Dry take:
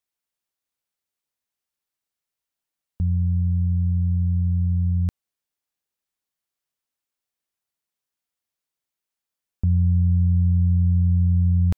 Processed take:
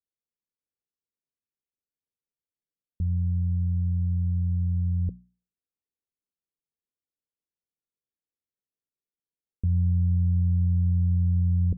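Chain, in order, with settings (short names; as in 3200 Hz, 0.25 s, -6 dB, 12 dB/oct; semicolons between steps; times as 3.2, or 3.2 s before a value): Chebyshev low-pass 500 Hz, order 4; notches 60/120/180/240 Hz; gain -3.5 dB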